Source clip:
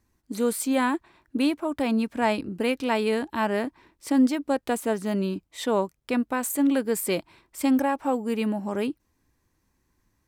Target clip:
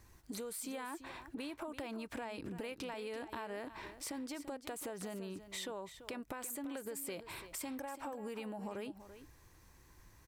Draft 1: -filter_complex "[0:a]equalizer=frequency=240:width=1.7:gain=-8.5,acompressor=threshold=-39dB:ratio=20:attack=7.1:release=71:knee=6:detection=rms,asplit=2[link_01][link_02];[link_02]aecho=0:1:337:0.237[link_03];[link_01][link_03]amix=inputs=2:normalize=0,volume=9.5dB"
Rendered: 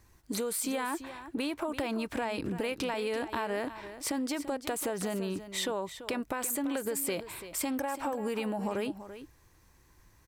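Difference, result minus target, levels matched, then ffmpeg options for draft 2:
downward compressor: peak gain reduction −10.5 dB
-filter_complex "[0:a]equalizer=frequency=240:width=1.7:gain=-8.5,acompressor=threshold=-50dB:ratio=20:attack=7.1:release=71:knee=6:detection=rms,asplit=2[link_01][link_02];[link_02]aecho=0:1:337:0.237[link_03];[link_01][link_03]amix=inputs=2:normalize=0,volume=9.5dB"

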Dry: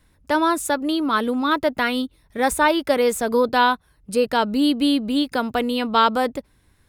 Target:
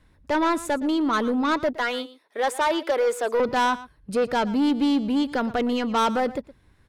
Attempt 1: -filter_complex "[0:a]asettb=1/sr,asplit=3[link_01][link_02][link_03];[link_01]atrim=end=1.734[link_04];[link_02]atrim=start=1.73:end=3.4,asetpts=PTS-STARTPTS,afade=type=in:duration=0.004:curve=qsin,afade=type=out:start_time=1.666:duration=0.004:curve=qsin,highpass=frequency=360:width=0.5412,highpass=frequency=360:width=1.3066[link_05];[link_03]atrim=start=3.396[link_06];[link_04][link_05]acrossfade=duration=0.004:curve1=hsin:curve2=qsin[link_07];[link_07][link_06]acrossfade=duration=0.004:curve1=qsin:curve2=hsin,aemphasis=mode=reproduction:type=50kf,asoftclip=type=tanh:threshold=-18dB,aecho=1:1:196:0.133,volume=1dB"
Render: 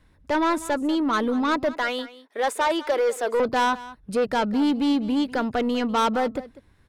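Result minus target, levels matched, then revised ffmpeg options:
echo 80 ms late
-filter_complex "[0:a]asettb=1/sr,asplit=3[link_01][link_02][link_03];[link_01]atrim=end=1.734[link_04];[link_02]atrim=start=1.73:end=3.4,asetpts=PTS-STARTPTS,afade=type=in:duration=0.004:curve=qsin,afade=type=out:start_time=1.666:duration=0.004:curve=qsin,highpass=frequency=360:width=0.5412,highpass=frequency=360:width=1.3066[link_05];[link_03]atrim=start=3.396[link_06];[link_04][link_05]acrossfade=duration=0.004:curve1=hsin:curve2=qsin[link_07];[link_07][link_06]acrossfade=duration=0.004:curve1=qsin:curve2=hsin,aemphasis=mode=reproduction:type=50kf,asoftclip=type=tanh:threshold=-18dB,aecho=1:1:116:0.133,volume=1dB"

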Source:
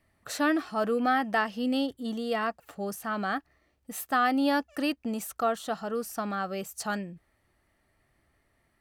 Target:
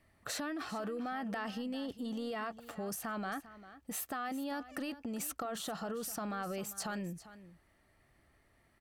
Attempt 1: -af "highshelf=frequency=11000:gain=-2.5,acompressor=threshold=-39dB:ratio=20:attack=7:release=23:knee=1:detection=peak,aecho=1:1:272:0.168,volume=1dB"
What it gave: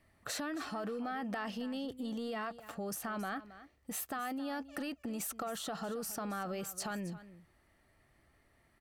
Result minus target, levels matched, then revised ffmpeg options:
echo 126 ms early
-af "highshelf=frequency=11000:gain=-2.5,acompressor=threshold=-39dB:ratio=20:attack=7:release=23:knee=1:detection=peak,aecho=1:1:398:0.168,volume=1dB"

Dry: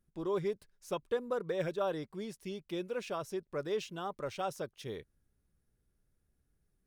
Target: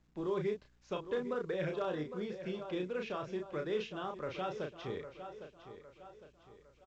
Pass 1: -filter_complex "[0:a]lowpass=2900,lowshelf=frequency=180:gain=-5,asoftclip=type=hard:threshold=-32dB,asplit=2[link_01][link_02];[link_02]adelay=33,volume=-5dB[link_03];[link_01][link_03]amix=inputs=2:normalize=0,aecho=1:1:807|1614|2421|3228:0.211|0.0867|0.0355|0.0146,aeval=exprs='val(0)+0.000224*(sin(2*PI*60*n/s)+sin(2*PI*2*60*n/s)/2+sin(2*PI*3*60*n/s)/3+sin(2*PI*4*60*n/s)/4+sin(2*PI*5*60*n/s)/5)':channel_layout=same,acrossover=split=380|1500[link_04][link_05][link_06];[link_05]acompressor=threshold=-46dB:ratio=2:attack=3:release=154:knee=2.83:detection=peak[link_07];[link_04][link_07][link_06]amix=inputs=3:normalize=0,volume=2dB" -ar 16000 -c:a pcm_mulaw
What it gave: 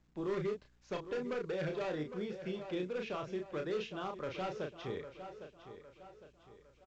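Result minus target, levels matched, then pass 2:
hard clipping: distortion +31 dB
-filter_complex "[0:a]lowpass=2900,lowshelf=frequency=180:gain=-5,asoftclip=type=hard:threshold=-23.5dB,asplit=2[link_01][link_02];[link_02]adelay=33,volume=-5dB[link_03];[link_01][link_03]amix=inputs=2:normalize=0,aecho=1:1:807|1614|2421|3228:0.211|0.0867|0.0355|0.0146,aeval=exprs='val(0)+0.000224*(sin(2*PI*60*n/s)+sin(2*PI*2*60*n/s)/2+sin(2*PI*3*60*n/s)/3+sin(2*PI*4*60*n/s)/4+sin(2*PI*5*60*n/s)/5)':channel_layout=same,acrossover=split=380|1500[link_04][link_05][link_06];[link_05]acompressor=threshold=-46dB:ratio=2:attack=3:release=154:knee=2.83:detection=peak[link_07];[link_04][link_07][link_06]amix=inputs=3:normalize=0,volume=2dB" -ar 16000 -c:a pcm_mulaw

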